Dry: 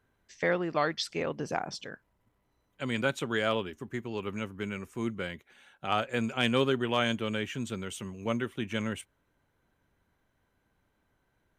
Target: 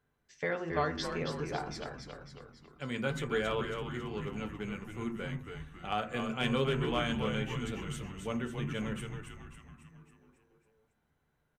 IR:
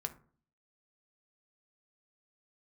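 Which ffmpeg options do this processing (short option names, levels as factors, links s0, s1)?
-filter_complex "[0:a]asplit=8[s0][s1][s2][s3][s4][s5][s6][s7];[s1]adelay=274,afreqshift=-94,volume=0.501[s8];[s2]adelay=548,afreqshift=-188,volume=0.269[s9];[s3]adelay=822,afreqshift=-282,volume=0.146[s10];[s4]adelay=1096,afreqshift=-376,volume=0.0785[s11];[s5]adelay=1370,afreqshift=-470,volume=0.0427[s12];[s6]adelay=1644,afreqshift=-564,volume=0.0229[s13];[s7]adelay=1918,afreqshift=-658,volume=0.0124[s14];[s0][s8][s9][s10][s11][s12][s13][s14]amix=inputs=8:normalize=0[s15];[1:a]atrim=start_sample=2205[s16];[s15][s16]afir=irnorm=-1:irlink=0,volume=0.596"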